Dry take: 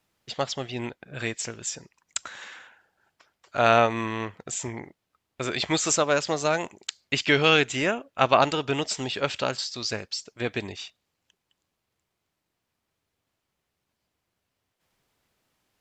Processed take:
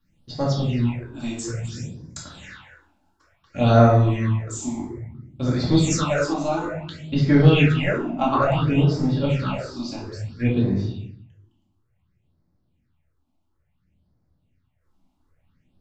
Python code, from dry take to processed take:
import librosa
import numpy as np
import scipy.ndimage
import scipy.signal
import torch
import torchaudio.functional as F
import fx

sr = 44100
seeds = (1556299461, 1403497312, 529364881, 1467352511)

y = fx.room_shoebox(x, sr, seeds[0], volume_m3=280.0, walls='mixed', distance_m=2.3)
y = fx.phaser_stages(y, sr, stages=6, low_hz=120.0, high_hz=2800.0, hz=0.58, feedback_pct=25)
y = fx.bass_treble(y, sr, bass_db=13, treble_db=fx.steps((0.0, -2.0), (6.32, -12.0)))
y = F.gain(torch.from_numpy(y), -4.5).numpy()